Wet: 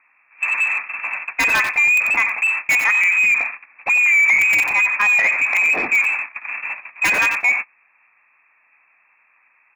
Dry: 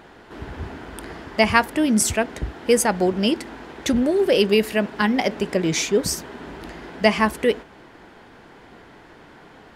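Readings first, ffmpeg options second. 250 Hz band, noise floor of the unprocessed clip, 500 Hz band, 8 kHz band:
-19.5 dB, -47 dBFS, -17.0 dB, -4.5 dB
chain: -filter_complex "[0:a]acrossover=split=260[s0][s1];[s0]acontrast=83[s2];[s2][s1]amix=inputs=2:normalize=0,lowpass=f=2300:t=q:w=0.5098,lowpass=f=2300:t=q:w=0.6013,lowpass=f=2300:t=q:w=0.9,lowpass=f=2300:t=q:w=2.563,afreqshift=-2700,aeval=exprs='(mod(2.11*val(0)+1,2)-1)/2.11':c=same,alimiter=limit=0.158:level=0:latency=1:release=44,bandreject=f=400:w=12,asplit=2[s3][s4];[s4]aecho=0:1:92|184|276:0.282|0.0535|0.0102[s5];[s3][s5]amix=inputs=2:normalize=0,acontrast=69,agate=range=0.0501:threshold=0.0631:ratio=16:detection=peak,asoftclip=type=tanh:threshold=0.168,equalizer=f=250:t=o:w=1:g=6,equalizer=f=1000:t=o:w=1:g=10,equalizer=f=2000:t=o:w=1:g=9,volume=0.631"

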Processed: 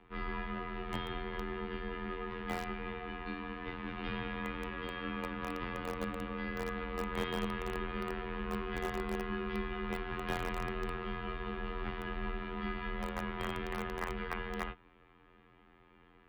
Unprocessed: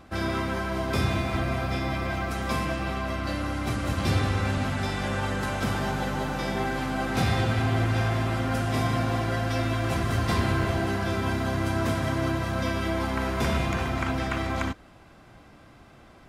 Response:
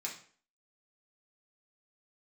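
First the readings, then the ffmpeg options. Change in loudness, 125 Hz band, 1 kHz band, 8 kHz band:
-12.0 dB, -19.5 dB, -10.5 dB, -17.5 dB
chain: -filter_complex "[0:a]afftfilt=real='hypot(re,im)*cos(PI*b)':imag='0':win_size=2048:overlap=0.75,highpass=f=350:t=q:w=0.5412,highpass=f=350:t=q:w=1.307,lowpass=f=3500:t=q:w=0.5176,lowpass=f=3500:t=q:w=0.7071,lowpass=f=3500:t=q:w=1.932,afreqshift=-310,highshelf=f=2500:g=-3,acrossover=split=480|860[s0][s1][s2];[s1]acrusher=bits=3:dc=4:mix=0:aa=0.000001[s3];[s0][s3][s2]amix=inputs=3:normalize=0,volume=0.841"

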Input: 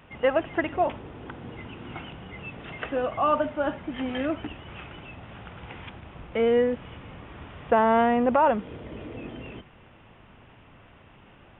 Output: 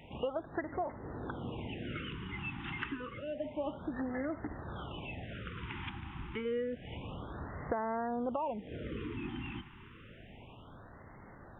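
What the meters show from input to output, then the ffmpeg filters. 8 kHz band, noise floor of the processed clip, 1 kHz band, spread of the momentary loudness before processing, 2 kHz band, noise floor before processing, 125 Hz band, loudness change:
no reading, -54 dBFS, -14.5 dB, 22 LU, -9.5 dB, -53 dBFS, -2.5 dB, -14.5 dB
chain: -af "acompressor=threshold=0.02:ratio=5,afftfilt=real='re*(1-between(b*sr/1024,520*pow(3100/520,0.5+0.5*sin(2*PI*0.29*pts/sr))/1.41,520*pow(3100/520,0.5+0.5*sin(2*PI*0.29*pts/sr))*1.41))':imag='im*(1-between(b*sr/1024,520*pow(3100/520,0.5+0.5*sin(2*PI*0.29*pts/sr))/1.41,520*pow(3100/520,0.5+0.5*sin(2*PI*0.29*pts/sr))*1.41))':win_size=1024:overlap=0.75"

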